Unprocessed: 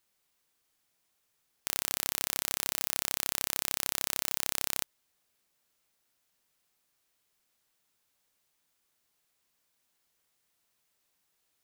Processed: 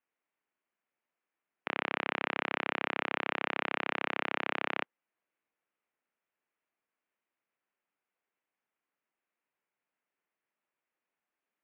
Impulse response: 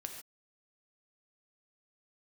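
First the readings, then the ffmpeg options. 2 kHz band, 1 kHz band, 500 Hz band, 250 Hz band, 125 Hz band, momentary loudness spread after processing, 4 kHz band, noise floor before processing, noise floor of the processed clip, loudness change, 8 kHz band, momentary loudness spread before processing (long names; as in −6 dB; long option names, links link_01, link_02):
+7.5 dB, +8.5 dB, +8.5 dB, +7.5 dB, −0.5 dB, 3 LU, −5.5 dB, −77 dBFS, below −85 dBFS, −3.0 dB, below −40 dB, 3 LU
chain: -af "afftdn=noise_reduction=15:noise_floor=-49,highpass=frequency=290:width_type=q:width=0.5412,highpass=frequency=290:width_type=q:width=1.307,lowpass=frequency=2700:width_type=q:width=0.5176,lowpass=frequency=2700:width_type=q:width=0.7071,lowpass=frequency=2700:width_type=q:width=1.932,afreqshift=-86,volume=9dB"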